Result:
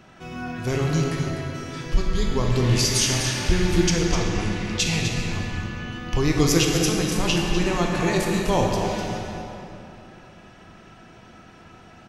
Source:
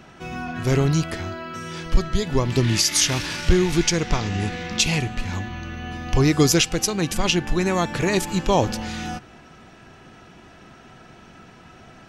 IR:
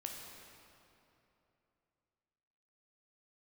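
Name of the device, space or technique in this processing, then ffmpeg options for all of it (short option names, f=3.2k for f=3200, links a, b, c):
cave: -filter_complex "[0:a]aecho=1:1:251:0.355[a];[1:a]atrim=start_sample=2205[b];[a][b]afir=irnorm=-1:irlink=0"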